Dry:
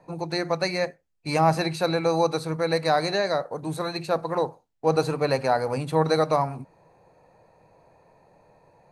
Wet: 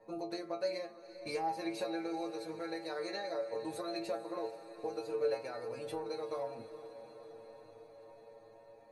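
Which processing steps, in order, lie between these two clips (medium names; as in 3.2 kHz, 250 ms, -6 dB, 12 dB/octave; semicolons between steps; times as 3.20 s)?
graphic EQ 125/500/1000/8000 Hz -9/+7/-4/-3 dB; compression 4:1, threshold -30 dBFS, peak gain reduction 15 dB; inharmonic resonator 110 Hz, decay 0.33 s, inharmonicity 0.002; echo that smears into a reverb 452 ms, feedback 70%, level -14 dB; trim +5 dB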